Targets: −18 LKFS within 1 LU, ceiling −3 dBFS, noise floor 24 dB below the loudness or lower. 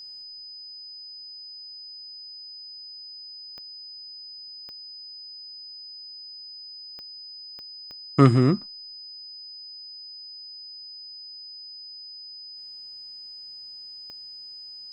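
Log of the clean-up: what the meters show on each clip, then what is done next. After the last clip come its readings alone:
number of clicks 6; interfering tone 5,000 Hz; level of the tone −39 dBFS; integrated loudness −32.0 LKFS; sample peak −3.5 dBFS; target loudness −18.0 LKFS
→ click removal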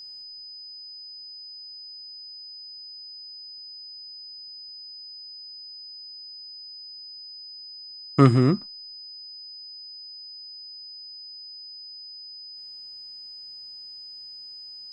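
number of clicks 0; interfering tone 5,000 Hz; level of the tone −39 dBFS
→ notch filter 5,000 Hz, Q 30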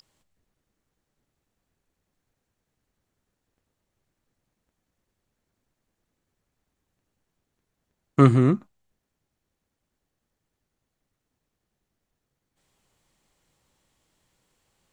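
interfering tone none found; integrated loudness −20.5 LKFS; sample peak −3.5 dBFS; target loudness −18.0 LKFS
→ level +2.5 dB
brickwall limiter −3 dBFS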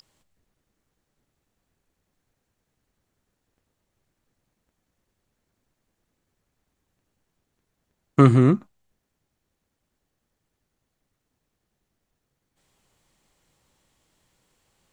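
integrated loudness −18.5 LKFS; sample peak −3.0 dBFS; background noise floor −79 dBFS

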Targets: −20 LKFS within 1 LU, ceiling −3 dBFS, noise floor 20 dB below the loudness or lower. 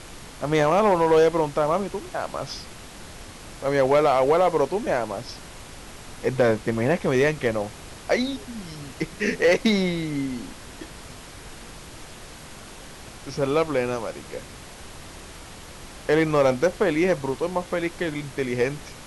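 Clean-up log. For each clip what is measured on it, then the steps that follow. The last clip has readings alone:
share of clipped samples 0.5%; peaks flattened at −12.0 dBFS; background noise floor −42 dBFS; target noise floor −44 dBFS; integrated loudness −23.5 LKFS; sample peak −12.0 dBFS; target loudness −20.0 LKFS
→ clipped peaks rebuilt −12 dBFS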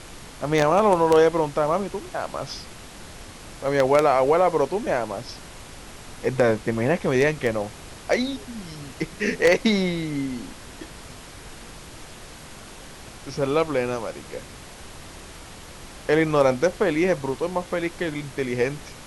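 share of clipped samples 0.0%; background noise floor −42 dBFS; target noise floor −43 dBFS
→ noise reduction from a noise print 6 dB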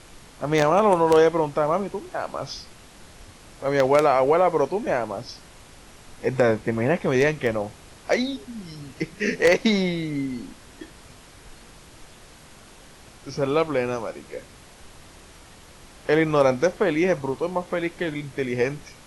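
background noise floor −48 dBFS; integrated loudness −22.5 LKFS; sample peak −3.0 dBFS; target loudness −20.0 LKFS
→ level +2.5 dB
brickwall limiter −3 dBFS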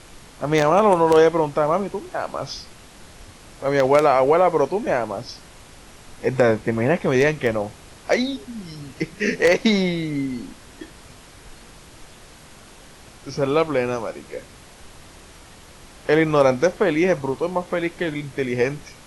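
integrated loudness −20.5 LKFS; sample peak −3.0 dBFS; background noise floor −46 dBFS

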